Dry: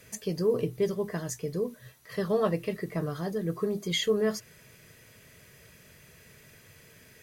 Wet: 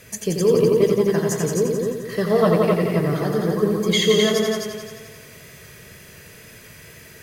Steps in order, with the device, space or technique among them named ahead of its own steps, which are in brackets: multi-head tape echo (multi-head delay 87 ms, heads all three, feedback 45%, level -6 dB; wow and flutter 20 cents); trim +8 dB

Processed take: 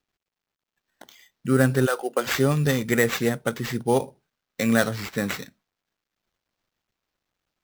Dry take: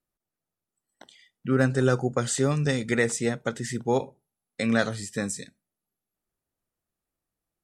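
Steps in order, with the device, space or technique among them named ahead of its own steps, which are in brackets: 1.85–2.26 s: high-pass 610 Hz -> 250 Hz 24 dB/octave; early companding sampler (sample-rate reducer 9.7 kHz, jitter 0%; companded quantiser 8-bit); trim +3 dB

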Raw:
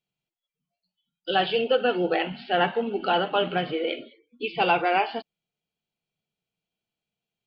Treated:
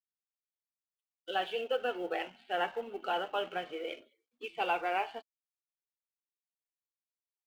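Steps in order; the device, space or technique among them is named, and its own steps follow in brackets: phone line with mismatched companding (band-pass 390–3300 Hz; companding laws mixed up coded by A); trim -8.5 dB

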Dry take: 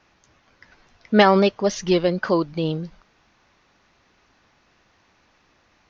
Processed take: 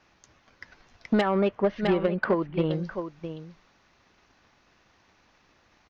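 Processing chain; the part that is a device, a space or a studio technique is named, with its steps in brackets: 1.21–2.71 s: low-pass 2.6 kHz 24 dB/octave; delay 659 ms -13 dB; drum-bus smash (transient shaper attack +8 dB, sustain +1 dB; compression 16:1, threshold -14 dBFS, peak gain reduction 10.5 dB; saturation -12 dBFS, distortion -17 dB); trim -2.5 dB

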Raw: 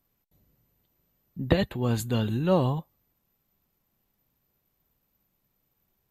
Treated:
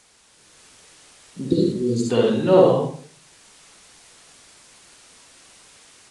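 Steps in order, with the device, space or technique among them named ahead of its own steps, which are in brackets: 1.45–2.06 s: elliptic band-stop 350–4600 Hz, stop band 40 dB; filmed off a television (band-pass 230–7300 Hz; peaking EQ 430 Hz +6.5 dB 0.49 oct; reverberation RT60 0.50 s, pre-delay 51 ms, DRR -2.5 dB; white noise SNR 25 dB; level rider gain up to 6.5 dB; AAC 48 kbps 22.05 kHz)

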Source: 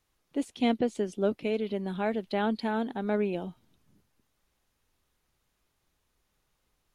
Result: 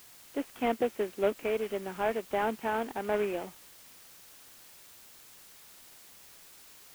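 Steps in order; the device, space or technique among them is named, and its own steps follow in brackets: army field radio (band-pass 390–2900 Hz; CVSD coder 16 kbps; white noise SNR 19 dB); trim +2.5 dB

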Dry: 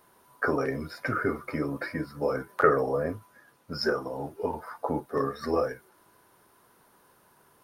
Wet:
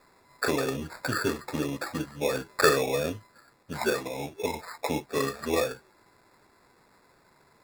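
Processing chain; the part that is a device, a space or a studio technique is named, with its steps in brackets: crushed at another speed (playback speed 0.5×; sample-and-hold 29×; playback speed 2×)

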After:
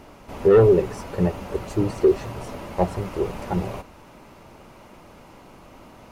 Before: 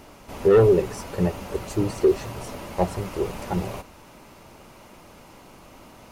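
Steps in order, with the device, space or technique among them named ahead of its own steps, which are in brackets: behind a face mask (treble shelf 3.5 kHz -7.5 dB); trim +1.5 dB

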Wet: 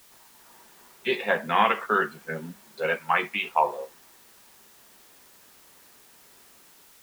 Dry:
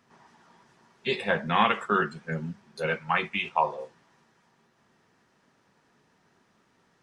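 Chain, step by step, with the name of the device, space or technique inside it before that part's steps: dictaphone (band-pass 270–3300 Hz; level rider gain up to 9.5 dB; wow and flutter; white noise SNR 25 dB); trim -5 dB

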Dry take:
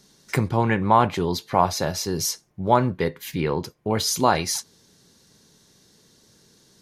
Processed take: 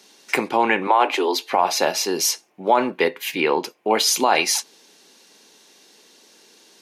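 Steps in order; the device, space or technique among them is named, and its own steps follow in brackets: 0.87–1.53 s: steep high-pass 260 Hz 96 dB/octave; laptop speaker (high-pass 270 Hz 24 dB/octave; peaking EQ 810 Hz +5.5 dB 0.54 oct; peaking EQ 2.6 kHz +10 dB 0.59 oct; peak limiter -10 dBFS, peak gain reduction 9 dB); trim +4.5 dB

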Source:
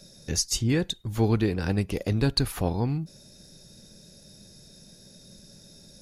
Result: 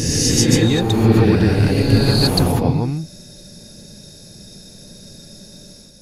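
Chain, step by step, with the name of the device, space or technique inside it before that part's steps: reverse reverb (reverse; reverberation RT60 2.2 s, pre-delay 110 ms, DRR -5 dB; reverse); trim +5 dB

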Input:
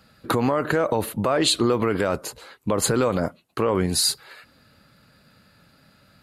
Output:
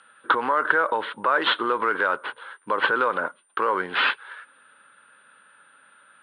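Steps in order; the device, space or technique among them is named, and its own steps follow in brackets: toy sound module (decimation joined by straight lines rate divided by 6×; class-D stage that switches slowly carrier 9.1 kHz; cabinet simulation 620–3700 Hz, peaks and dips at 680 Hz -9 dB, 1 kHz +5 dB, 1.5 kHz +10 dB, 2.4 kHz -5 dB, 3.6 kHz +5 dB); trim +2.5 dB

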